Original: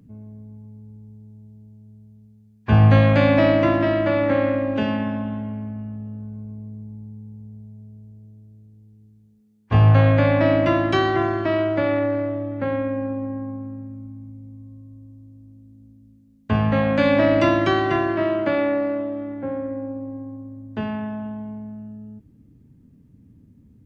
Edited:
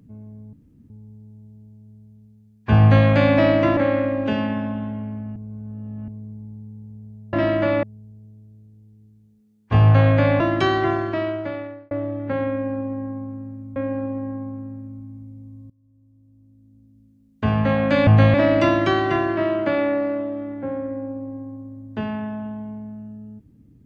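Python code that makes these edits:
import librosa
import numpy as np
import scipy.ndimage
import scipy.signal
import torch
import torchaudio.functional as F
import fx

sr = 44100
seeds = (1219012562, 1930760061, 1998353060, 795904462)

y = fx.edit(x, sr, fx.room_tone_fill(start_s=0.53, length_s=0.37),
    fx.duplicate(start_s=2.8, length_s=0.27, to_s=17.14),
    fx.move(start_s=3.77, length_s=0.5, to_s=7.83),
    fx.reverse_span(start_s=5.86, length_s=0.72),
    fx.cut(start_s=10.4, length_s=0.32),
    fx.fade_out_span(start_s=11.23, length_s=1.0),
    fx.repeat(start_s=12.83, length_s=1.25, count=2),
    fx.fade_in_from(start_s=14.77, length_s=1.86, floor_db=-22.0), tone=tone)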